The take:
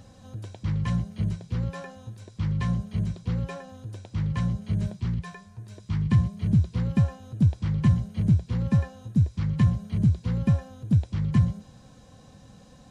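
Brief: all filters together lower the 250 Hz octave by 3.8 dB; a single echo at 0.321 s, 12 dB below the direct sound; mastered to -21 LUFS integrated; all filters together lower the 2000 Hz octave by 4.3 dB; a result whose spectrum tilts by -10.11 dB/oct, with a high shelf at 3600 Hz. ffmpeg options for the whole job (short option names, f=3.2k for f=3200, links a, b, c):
-af "equalizer=f=250:t=o:g=-7,equalizer=f=2k:t=o:g=-6,highshelf=f=3.6k:g=4,aecho=1:1:321:0.251,volume=7dB"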